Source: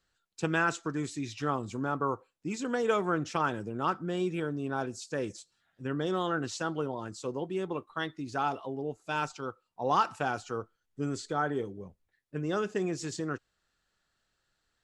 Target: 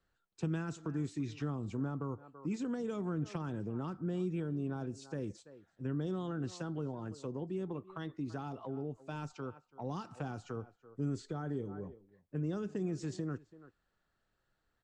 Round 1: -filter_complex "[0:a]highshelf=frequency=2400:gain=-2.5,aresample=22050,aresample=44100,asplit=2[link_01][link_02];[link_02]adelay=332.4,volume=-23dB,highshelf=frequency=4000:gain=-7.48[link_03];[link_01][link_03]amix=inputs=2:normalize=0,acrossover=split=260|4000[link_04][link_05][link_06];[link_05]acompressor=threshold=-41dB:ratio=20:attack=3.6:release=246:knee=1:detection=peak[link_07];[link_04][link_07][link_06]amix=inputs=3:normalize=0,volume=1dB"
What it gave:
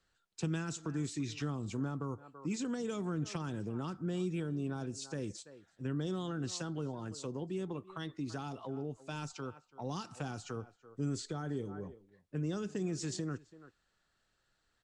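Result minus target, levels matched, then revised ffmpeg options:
4,000 Hz band +8.0 dB
-filter_complex "[0:a]highshelf=frequency=2400:gain=-14.5,aresample=22050,aresample=44100,asplit=2[link_01][link_02];[link_02]adelay=332.4,volume=-23dB,highshelf=frequency=4000:gain=-7.48[link_03];[link_01][link_03]amix=inputs=2:normalize=0,acrossover=split=260|4000[link_04][link_05][link_06];[link_05]acompressor=threshold=-41dB:ratio=20:attack=3.6:release=246:knee=1:detection=peak[link_07];[link_04][link_07][link_06]amix=inputs=3:normalize=0,volume=1dB"

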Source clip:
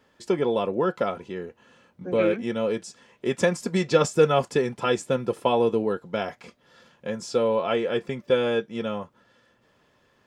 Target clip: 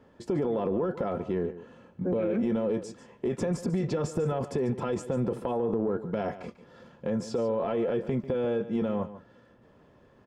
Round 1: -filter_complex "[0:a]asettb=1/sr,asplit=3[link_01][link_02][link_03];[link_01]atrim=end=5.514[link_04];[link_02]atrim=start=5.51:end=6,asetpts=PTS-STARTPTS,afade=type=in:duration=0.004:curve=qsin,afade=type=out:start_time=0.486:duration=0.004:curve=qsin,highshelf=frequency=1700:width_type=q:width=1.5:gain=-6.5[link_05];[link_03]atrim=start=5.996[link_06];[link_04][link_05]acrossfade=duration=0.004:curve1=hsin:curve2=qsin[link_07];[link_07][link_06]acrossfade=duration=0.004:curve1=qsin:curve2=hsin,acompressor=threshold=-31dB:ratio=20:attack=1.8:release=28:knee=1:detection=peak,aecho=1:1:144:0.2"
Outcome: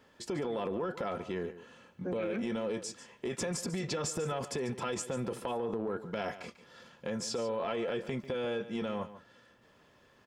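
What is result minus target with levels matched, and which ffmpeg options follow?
1,000 Hz band +3.5 dB
-filter_complex "[0:a]asettb=1/sr,asplit=3[link_01][link_02][link_03];[link_01]atrim=end=5.514[link_04];[link_02]atrim=start=5.51:end=6,asetpts=PTS-STARTPTS,afade=type=in:duration=0.004:curve=qsin,afade=type=out:start_time=0.486:duration=0.004:curve=qsin,highshelf=frequency=1700:width_type=q:width=1.5:gain=-6.5[link_05];[link_03]atrim=start=5.996[link_06];[link_04][link_05]acrossfade=duration=0.004:curve1=hsin:curve2=qsin[link_07];[link_07][link_06]acrossfade=duration=0.004:curve1=qsin:curve2=hsin,acompressor=threshold=-31dB:ratio=20:attack=1.8:release=28:knee=1:detection=peak,tiltshelf=frequency=1300:gain=8.5,aecho=1:1:144:0.2"

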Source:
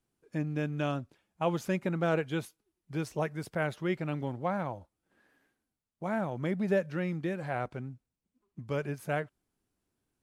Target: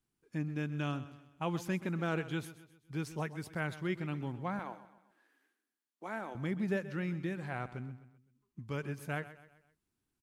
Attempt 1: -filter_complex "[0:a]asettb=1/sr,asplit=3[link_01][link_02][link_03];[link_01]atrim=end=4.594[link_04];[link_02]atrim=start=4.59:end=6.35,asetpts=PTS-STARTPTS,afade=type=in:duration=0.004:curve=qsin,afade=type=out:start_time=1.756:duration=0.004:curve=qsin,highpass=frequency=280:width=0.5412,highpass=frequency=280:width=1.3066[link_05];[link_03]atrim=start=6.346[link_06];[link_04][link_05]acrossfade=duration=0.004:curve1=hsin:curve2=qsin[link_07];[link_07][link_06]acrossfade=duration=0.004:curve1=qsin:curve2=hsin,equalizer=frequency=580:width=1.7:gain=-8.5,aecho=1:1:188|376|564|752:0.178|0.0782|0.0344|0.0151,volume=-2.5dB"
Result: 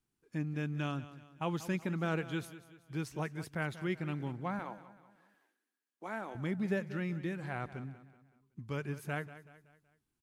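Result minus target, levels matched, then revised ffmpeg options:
echo 59 ms late
-filter_complex "[0:a]asettb=1/sr,asplit=3[link_01][link_02][link_03];[link_01]atrim=end=4.594[link_04];[link_02]atrim=start=4.59:end=6.35,asetpts=PTS-STARTPTS,afade=type=in:duration=0.004:curve=qsin,afade=type=out:start_time=1.756:duration=0.004:curve=qsin,highpass=frequency=280:width=0.5412,highpass=frequency=280:width=1.3066[link_05];[link_03]atrim=start=6.346[link_06];[link_04][link_05]acrossfade=duration=0.004:curve1=hsin:curve2=qsin[link_07];[link_07][link_06]acrossfade=duration=0.004:curve1=qsin:curve2=hsin,equalizer=frequency=580:width=1.7:gain=-8.5,aecho=1:1:129|258|387|516:0.178|0.0782|0.0344|0.0151,volume=-2.5dB"

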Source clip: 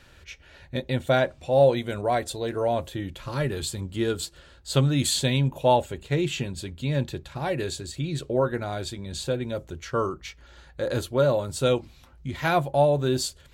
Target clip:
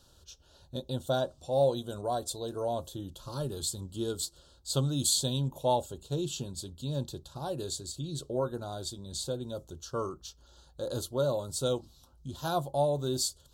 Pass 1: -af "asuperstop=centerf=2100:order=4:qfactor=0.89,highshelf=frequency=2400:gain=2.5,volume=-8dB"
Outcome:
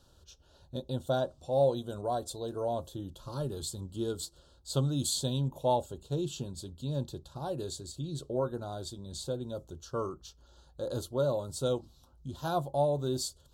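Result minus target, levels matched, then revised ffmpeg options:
4,000 Hz band −3.5 dB
-af "asuperstop=centerf=2100:order=4:qfactor=0.89,highshelf=frequency=2400:gain=8.5,volume=-8dB"

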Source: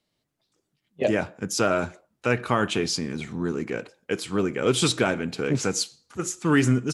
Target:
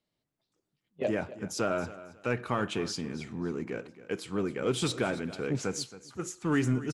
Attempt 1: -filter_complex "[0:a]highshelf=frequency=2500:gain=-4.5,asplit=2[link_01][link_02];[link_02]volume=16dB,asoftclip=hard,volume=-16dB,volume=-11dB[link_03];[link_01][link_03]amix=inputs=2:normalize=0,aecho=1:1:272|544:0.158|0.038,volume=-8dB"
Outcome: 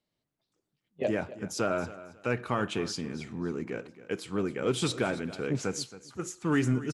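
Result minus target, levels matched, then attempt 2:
gain into a clipping stage and back: distortion −8 dB
-filter_complex "[0:a]highshelf=frequency=2500:gain=-4.5,asplit=2[link_01][link_02];[link_02]volume=23.5dB,asoftclip=hard,volume=-23.5dB,volume=-11dB[link_03];[link_01][link_03]amix=inputs=2:normalize=0,aecho=1:1:272|544:0.158|0.038,volume=-8dB"

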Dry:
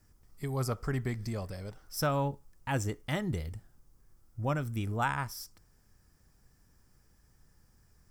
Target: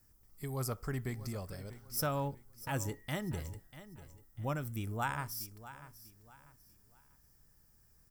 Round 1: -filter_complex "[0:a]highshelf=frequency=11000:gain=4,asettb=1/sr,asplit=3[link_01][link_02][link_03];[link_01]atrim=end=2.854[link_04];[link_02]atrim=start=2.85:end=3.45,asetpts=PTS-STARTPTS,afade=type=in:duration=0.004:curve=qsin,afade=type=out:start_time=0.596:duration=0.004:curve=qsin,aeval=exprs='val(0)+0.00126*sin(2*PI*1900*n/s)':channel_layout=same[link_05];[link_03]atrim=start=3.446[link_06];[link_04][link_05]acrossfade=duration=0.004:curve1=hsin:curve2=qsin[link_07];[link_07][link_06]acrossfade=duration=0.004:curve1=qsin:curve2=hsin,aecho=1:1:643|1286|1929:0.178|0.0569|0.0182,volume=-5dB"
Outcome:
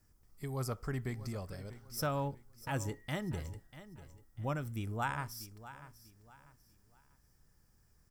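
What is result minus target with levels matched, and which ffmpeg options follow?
8,000 Hz band −3.5 dB
-filter_complex "[0:a]highshelf=frequency=11000:gain=16,asettb=1/sr,asplit=3[link_01][link_02][link_03];[link_01]atrim=end=2.854[link_04];[link_02]atrim=start=2.85:end=3.45,asetpts=PTS-STARTPTS,afade=type=in:duration=0.004:curve=qsin,afade=type=out:start_time=0.596:duration=0.004:curve=qsin,aeval=exprs='val(0)+0.00126*sin(2*PI*1900*n/s)':channel_layout=same[link_05];[link_03]atrim=start=3.446[link_06];[link_04][link_05]acrossfade=duration=0.004:curve1=hsin:curve2=qsin[link_07];[link_07][link_06]acrossfade=duration=0.004:curve1=qsin:curve2=hsin,aecho=1:1:643|1286|1929:0.178|0.0569|0.0182,volume=-5dB"

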